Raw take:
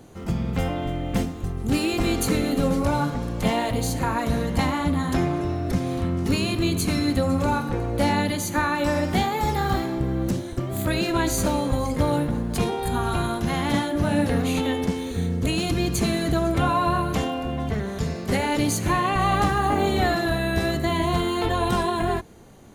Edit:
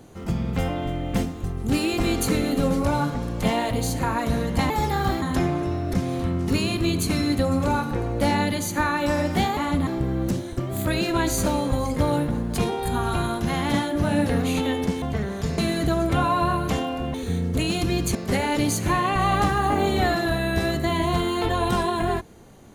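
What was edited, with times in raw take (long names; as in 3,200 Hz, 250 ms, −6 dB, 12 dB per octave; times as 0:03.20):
0:04.70–0:05.00: swap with 0:09.35–0:09.87
0:15.02–0:16.03: swap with 0:17.59–0:18.15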